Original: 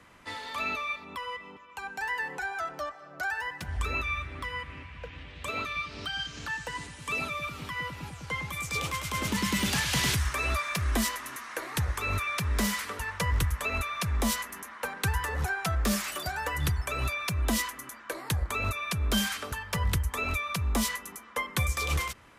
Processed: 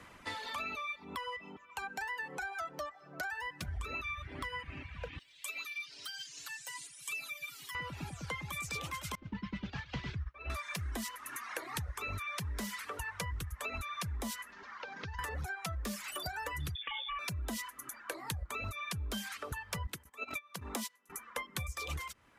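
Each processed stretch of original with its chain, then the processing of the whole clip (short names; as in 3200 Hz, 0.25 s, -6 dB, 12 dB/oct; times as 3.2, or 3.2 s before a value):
5.19–7.75 pre-emphasis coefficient 0.97 + comb 7.2 ms, depth 77%
9.15–10.5 expander -22 dBFS + Gaussian blur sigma 2.2 samples + low shelf 98 Hz +11 dB
14.52–15.19 CVSD 32 kbps + compressor, threshold -41 dBFS
16.75–17.19 negative-ratio compressor -33 dBFS + inverted band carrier 3500 Hz
19.87–21.1 notch 1200 Hz, Q 24 + gate -30 dBFS, range -16 dB + HPF 200 Hz
whole clip: reverb removal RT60 1.1 s; compressor 6:1, threshold -39 dBFS; gain +2 dB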